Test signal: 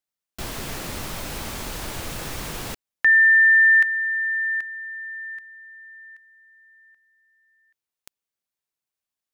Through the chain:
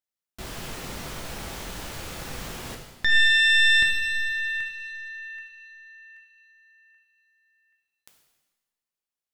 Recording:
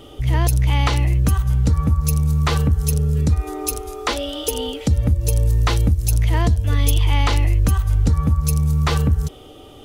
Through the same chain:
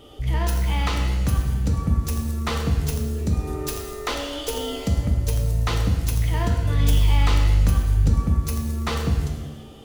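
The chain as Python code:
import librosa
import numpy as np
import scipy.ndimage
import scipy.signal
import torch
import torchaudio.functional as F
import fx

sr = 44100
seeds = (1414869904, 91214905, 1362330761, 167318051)

y = fx.tracing_dist(x, sr, depth_ms=0.11)
y = fx.rev_shimmer(y, sr, seeds[0], rt60_s=1.1, semitones=7, shimmer_db=-8, drr_db=2.0)
y = y * librosa.db_to_amplitude(-6.0)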